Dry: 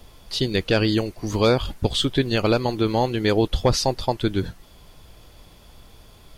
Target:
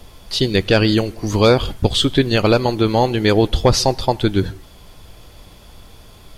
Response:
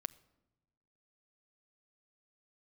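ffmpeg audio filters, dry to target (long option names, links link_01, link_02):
-filter_complex "[0:a]asplit=2[link_01][link_02];[1:a]atrim=start_sample=2205,afade=type=out:start_time=0.17:duration=0.01,atrim=end_sample=7938,asetrate=27342,aresample=44100[link_03];[link_02][link_03]afir=irnorm=-1:irlink=0,volume=6dB[link_04];[link_01][link_04]amix=inputs=2:normalize=0,volume=-4dB"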